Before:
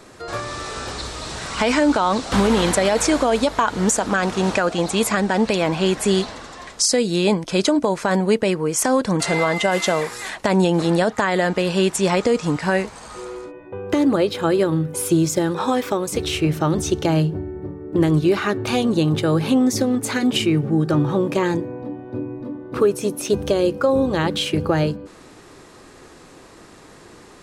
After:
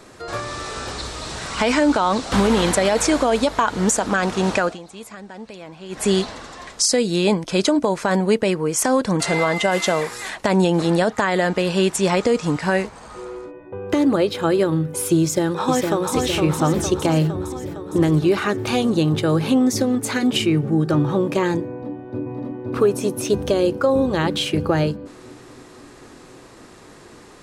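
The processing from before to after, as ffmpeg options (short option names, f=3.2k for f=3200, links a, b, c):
-filter_complex "[0:a]asettb=1/sr,asplit=3[a][b][c];[a]atrim=end=12.874[d];[b]atrim=start=12.87:end=13.82,asetpts=PTS-STARTPTS,afade=t=in:d=0.004:c=qsin,afade=t=out:st=0.946:d=0.004:c=qsin,highshelf=f=2.5k:g=-7.5[e];[c]atrim=start=13.816[f];[d][e]acrossfade=d=0.004:c1=hsin:c2=qsin[g];[g][f]acrossfade=d=0.004:c1=qsin:c2=hsin,asplit=2[h][i];[i]afade=t=in:st=15.22:d=0.01,afade=t=out:st=16.14:d=0.01,aecho=0:1:460|920|1380|1840|2300|2760|3220|3680|4140|4600:0.630957|0.410122|0.266579|0.173277|0.11263|0.0732094|0.0475861|0.030931|0.0201051|0.0130683[j];[h][j]amix=inputs=2:normalize=0,asplit=2[k][l];[l]afade=t=in:st=21.74:d=0.01,afade=t=out:st=22.72:d=0.01,aecho=0:1:520|1040|1560|2080|2600|3120|3640|4160|4680|5200|5720|6240:0.794328|0.55603|0.389221|0.272455|0.190718|0.133503|0.0934519|0.0654163|0.0457914|0.032054|0.0224378|0.0157065[m];[k][m]amix=inputs=2:normalize=0,asplit=3[n][o][p];[n]atrim=end=4.79,asetpts=PTS-STARTPTS,afade=t=out:st=4.64:d=0.15:silence=0.125893[q];[o]atrim=start=4.79:end=5.89,asetpts=PTS-STARTPTS,volume=-18dB[r];[p]atrim=start=5.89,asetpts=PTS-STARTPTS,afade=t=in:d=0.15:silence=0.125893[s];[q][r][s]concat=n=3:v=0:a=1"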